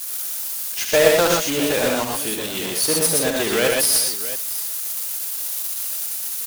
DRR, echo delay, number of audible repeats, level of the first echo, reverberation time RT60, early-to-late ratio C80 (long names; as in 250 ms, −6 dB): no reverb audible, 68 ms, 4, −6.0 dB, no reverb audible, no reverb audible